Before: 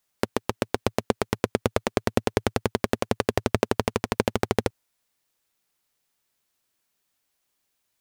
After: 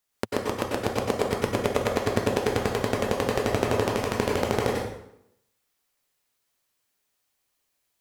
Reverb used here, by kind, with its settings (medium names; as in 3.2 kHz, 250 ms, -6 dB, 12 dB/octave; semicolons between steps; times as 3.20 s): plate-style reverb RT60 0.76 s, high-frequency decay 0.8×, pre-delay 85 ms, DRR -3 dB; trim -4 dB